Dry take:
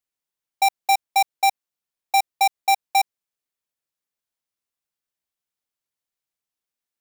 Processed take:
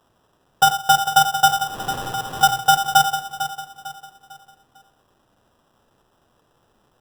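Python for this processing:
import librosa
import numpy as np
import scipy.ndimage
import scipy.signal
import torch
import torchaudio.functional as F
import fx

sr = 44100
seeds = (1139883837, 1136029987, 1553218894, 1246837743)

p1 = fx.clip_1bit(x, sr, at=(1.48, 2.43))
p2 = fx.level_steps(p1, sr, step_db=17)
p3 = p1 + F.gain(torch.from_numpy(p2), 0.0).numpy()
p4 = fx.env_lowpass_down(p3, sr, base_hz=1700.0, full_db=-15.0)
p5 = fx.quant_dither(p4, sr, seeds[0], bits=10, dither='triangular')
p6 = fx.peak_eq(p5, sr, hz=2000.0, db=-13.5, octaves=0.47)
p7 = fx.transient(p6, sr, attack_db=4, sustain_db=-11)
p8 = fx.peak_eq(p7, sr, hz=120.0, db=13.5, octaves=0.35)
p9 = p8 + fx.echo_feedback(p8, sr, ms=450, feedback_pct=37, wet_db=-11.0, dry=0)
p10 = fx.room_shoebox(p9, sr, seeds[1], volume_m3=920.0, walls='furnished', distance_m=2.2)
p11 = fx.sample_hold(p10, sr, seeds[2], rate_hz=2200.0, jitter_pct=0)
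y = F.gain(torch.from_numpy(p11), -5.0).numpy()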